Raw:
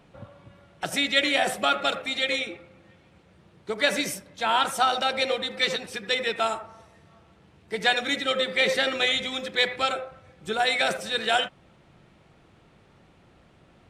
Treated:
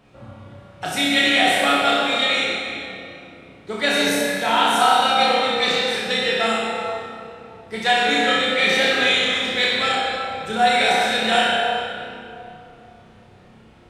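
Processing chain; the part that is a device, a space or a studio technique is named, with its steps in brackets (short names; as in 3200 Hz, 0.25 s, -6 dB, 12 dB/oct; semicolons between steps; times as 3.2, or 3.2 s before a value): tunnel (flutter echo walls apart 5.4 m, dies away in 0.52 s; reverb RT60 2.9 s, pre-delay 10 ms, DRR -3 dB)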